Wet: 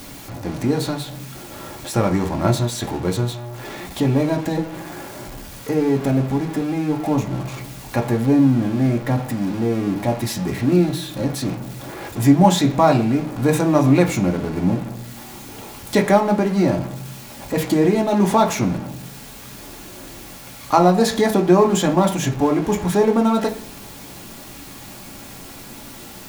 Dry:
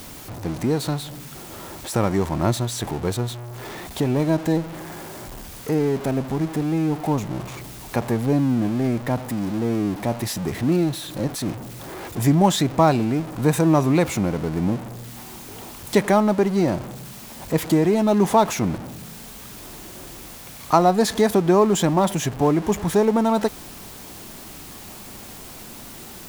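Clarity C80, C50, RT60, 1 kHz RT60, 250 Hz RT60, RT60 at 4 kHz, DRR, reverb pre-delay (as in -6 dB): 17.5 dB, 13.0 dB, 0.40 s, 0.35 s, 0.60 s, 0.50 s, 1.0 dB, 3 ms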